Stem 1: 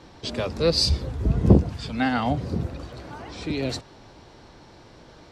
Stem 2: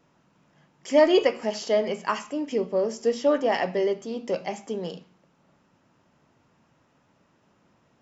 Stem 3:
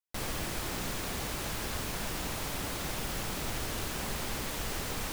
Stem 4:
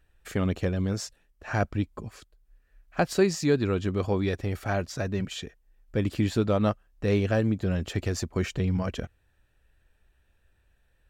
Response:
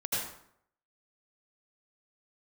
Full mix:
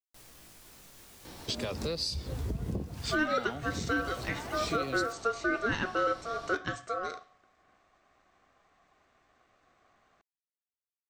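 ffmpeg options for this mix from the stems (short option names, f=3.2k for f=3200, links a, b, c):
-filter_complex "[0:a]acompressor=threshold=-32dB:ratio=1.5,adelay=1250,volume=-0.5dB[a];[1:a]aeval=exprs='val(0)*sin(2*PI*920*n/s)':c=same,adelay=2200,volume=-0.5dB[b];[2:a]alimiter=level_in=8.5dB:limit=-24dB:level=0:latency=1:release=156,volume=-8.5dB,flanger=delay=16:depth=4.9:speed=0.52,volume=-12dB[c];[a][c]amix=inputs=2:normalize=0,highshelf=f=4.2k:g=9,acompressor=threshold=-30dB:ratio=16,volume=0dB[d];[b][d]amix=inputs=2:normalize=0,alimiter=limit=-18.5dB:level=0:latency=1:release=331"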